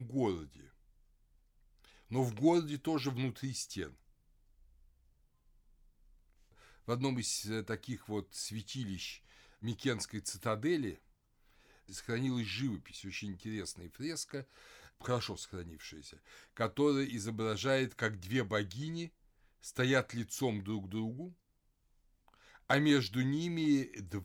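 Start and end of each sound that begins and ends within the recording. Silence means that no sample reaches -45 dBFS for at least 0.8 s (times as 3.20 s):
1.85–3.90 s
6.88–10.94 s
11.89–21.29 s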